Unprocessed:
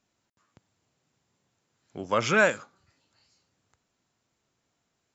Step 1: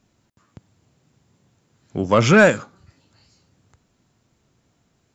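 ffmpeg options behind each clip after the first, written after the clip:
ffmpeg -i in.wav -af "lowshelf=frequency=340:gain=11.5,acontrast=89" out.wav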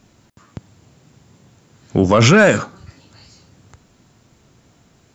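ffmpeg -i in.wav -af "alimiter=level_in=13.5dB:limit=-1dB:release=50:level=0:latency=1,volume=-2dB" out.wav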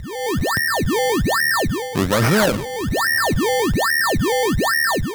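ffmpeg -i in.wav -af "aeval=exprs='val(0)+0.0891*sin(2*PI*1800*n/s)':channel_layout=same,acrusher=samples=23:mix=1:aa=0.000001:lfo=1:lforange=23:lforate=1.2,dynaudnorm=framelen=100:gausssize=5:maxgain=13dB,volume=-7dB" out.wav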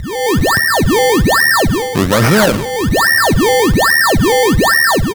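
ffmpeg -i in.wav -filter_complex "[0:a]asplit=2[link_01][link_02];[link_02]alimiter=limit=-17dB:level=0:latency=1:release=263,volume=-2.5dB[link_03];[link_01][link_03]amix=inputs=2:normalize=0,aecho=1:1:66|132|198|264:0.119|0.0559|0.0263|0.0123,volume=3.5dB" out.wav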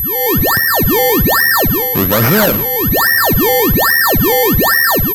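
ffmpeg -i in.wav -af "aeval=exprs='val(0)+0.224*sin(2*PI*12000*n/s)':channel_layout=same,volume=-1.5dB" out.wav

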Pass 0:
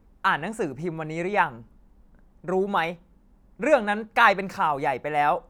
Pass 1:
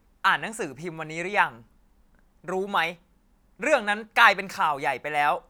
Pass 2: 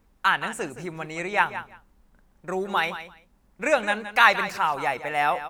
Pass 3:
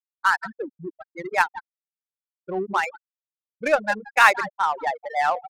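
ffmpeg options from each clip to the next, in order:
ffmpeg -i in.wav -af "tiltshelf=frequency=1100:gain=-6" out.wav
ffmpeg -i in.wav -af "aecho=1:1:169|338:0.237|0.0379" out.wav
ffmpeg -i in.wav -af "afftfilt=real='re*gte(hypot(re,im),0.141)':imag='im*gte(hypot(re,im),0.141)':win_size=1024:overlap=0.75,adynamicsmooth=sensitivity=3:basefreq=1300,volume=2dB" out.wav

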